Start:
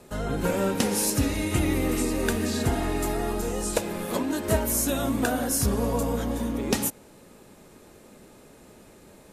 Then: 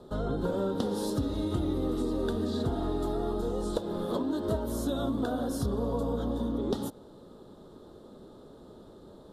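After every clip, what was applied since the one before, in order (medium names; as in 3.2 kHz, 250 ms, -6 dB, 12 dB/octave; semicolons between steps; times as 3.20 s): FFT filter 210 Hz 0 dB, 390 Hz +3 dB, 810 Hz -2 dB, 1.3 kHz -1 dB, 2.4 kHz -26 dB, 3.5 kHz +1 dB, 6.3 kHz -16 dB, 9.3 kHz -16 dB, 15 kHz -18 dB; compression 3:1, threshold -28 dBFS, peak gain reduction 8.5 dB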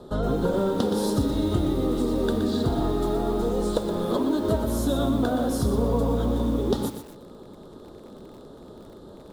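bit-crushed delay 121 ms, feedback 35%, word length 8-bit, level -8 dB; trim +6 dB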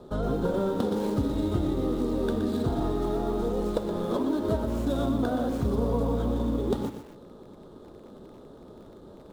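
median filter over 9 samples; trim -3 dB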